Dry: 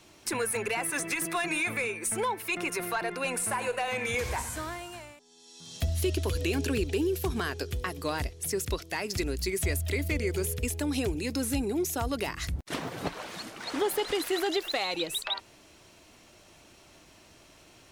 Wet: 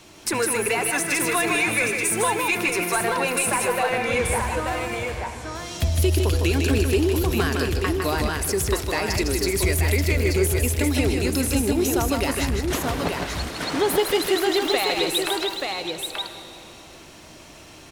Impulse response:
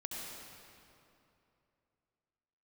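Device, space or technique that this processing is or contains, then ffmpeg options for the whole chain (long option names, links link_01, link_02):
saturated reverb return: -filter_complex "[0:a]asettb=1/sr,asplit=3[link_01][link_02][link_03];[link_01]atrim=end=3.674[link_04];[link_02]atrim=start=3.67:end=4.67,asetpts=PTS-STARTPTS,afade=type=in:duration=0.004:curve=qsin,afade=type=out:start_time=0.996:duration=0.004:curve=qsin,aemphasis=mode=reproduction:type=75fm[link_05];[link_03]atrim=start=4.666[link_06];[link_04][link_05]acrossfade=duration=0.004:curve1=hsin:curve2=qsin[link_07];[link_07][link_06]acrossfade=duration=0.004:curve1=qsin:curve2=hsin,aecho=1:1:157|882:0.596|0.562,asplit=2[link_08][link_09];[1:a]atrim=start_sample=2205[link_10];[link_09][link_10]afir=irnorm=-1:irlink=0,asoftclip=type=tanh:threshold=-34dB,volume=-3.5dB[link_11];[link_08][link_11]amix=inputs=2:normalize=0,volume=5dB"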